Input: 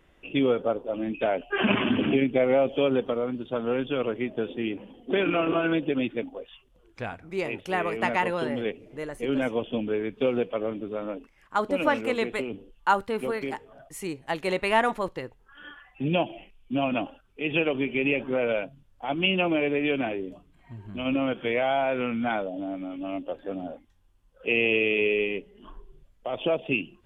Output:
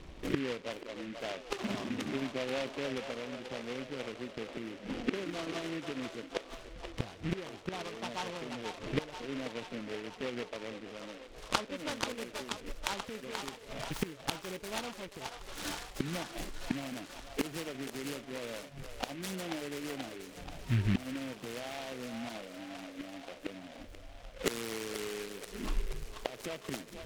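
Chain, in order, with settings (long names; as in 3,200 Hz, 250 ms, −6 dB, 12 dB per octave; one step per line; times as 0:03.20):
low-shelf EQ 470 Hz +10.5 dB
gate with flip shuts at −22 dBFS, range −24 dB
low-pass filter sweep 1,100 Hz → 5,000 Hz, 0:10.68–0:14.63
delay with a band-pass on its return 483 ms, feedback 69%, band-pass 1,200 Hz, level −4.5 dB
short delay modulated by noise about 2,000 Hz, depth 0.15 ms
level +3 dB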